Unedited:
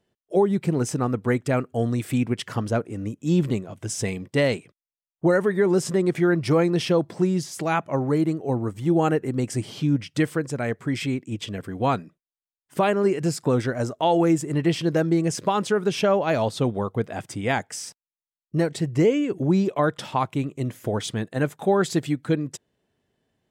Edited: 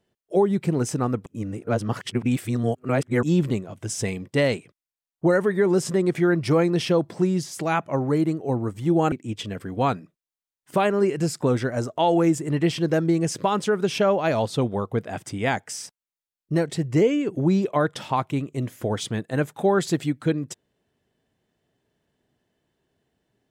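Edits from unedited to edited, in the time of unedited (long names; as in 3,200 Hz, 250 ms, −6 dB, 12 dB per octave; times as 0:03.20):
0:01.26–0:03.23: reverse
0:09.12–0:11.15: remove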